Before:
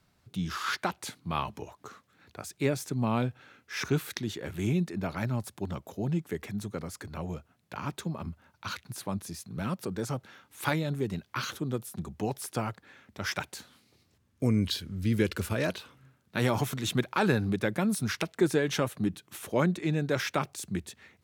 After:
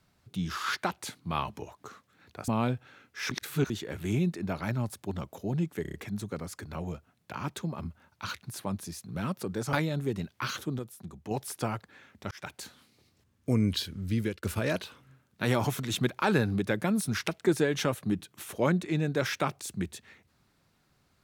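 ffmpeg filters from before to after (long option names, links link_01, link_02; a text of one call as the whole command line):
ffmpeg -i in.wav -filter_complex "[0:a]asplit=13[link_01][link_02][link_03][link_04][link_05][link_06][link_07][link_08][link_09][link_10][link_11][link_12][link_13];[link_01]atrim=end=2.482[link_14];[link_02]atrim=start=3.018:end=3.852[link_15];[link_03]atrim=start=3.848:end=4.242,asetpts=PTS-STARTPTS,areverse[link_16];[link_04]atrim=start=4.238:end=6.392[link_17];[link_05]atrim=start=6.358:end=6.392[link_18];[link_06]atrim=start=6.358:end=6.392[link_19];[link_07]atrim=start=6.358:end=6.392[link_20];[link_08]atrim=start=6.358:end=10.152[link_21];[link_09]atrim=start=10.668:end=11.732[link_22];[link_10]atrim=start=11.728:end=12.252,asetpts=PTS-STARTPTS,volume=-6.5dB[link_23];[link_11]atrim=start=12.248:end=13.25,asetpts=PTS-STARTPTS,afade=type=out:start_time=0.998:duration=0.004:curve=hsin[link_24];[link_12]atrim=start=13.25:end=15.37,asetpts=PTS-STARTPTS,afade=type=in:duration=0.31,afade=type=out:start_time=1.68:duration=0.44:curve=qsin[link_25];[link_13]atrim=start=15.37,asetpts=PTS-STARTPTS,afade=type=in:duration=0.004:curve=hsin[link_26];[link_14][link_15]acrossfade=duration=0.004:curve1=hsin:curve2=hsin[link_27];[link_27][link_16]acrossfade=duration=0.004:curve1=hsin:curve2=hsin[link_28];[link_28][link_17]acrossfade=duration=0.004:curve1=hsin:curve2=hsin[link_29];[link_29][link_18]acrossfade=duration=0.004:curve1=hsin:curve2=hsin[link_30];[link_30][link_19]acrossfade=duration=0.004:curve1=hsin:curve2=hsin[link_31];[link_31][link_20]acrossfade=duration=0.004:curve1=hsin:curve2=hsin[link_32];[link_32][link_21]acrossfade=duration=0.004:curve1=hsin:curve2=hsin[link_33];[link_33][link_22]acrossfade=duration=0.004:curve1=hsin:curve2=hsin[link_34];[link_34][link_23]acrossfade=duration=0.004:curve1=hsin:curve2=hsin[link_35];[link_24][link_25][link_26]concat=n=3:v=0:a=1[link_36];[link_35][link_36]acrossfade=duration=0.004:curve1=hsin:curve2=hsin" out.wav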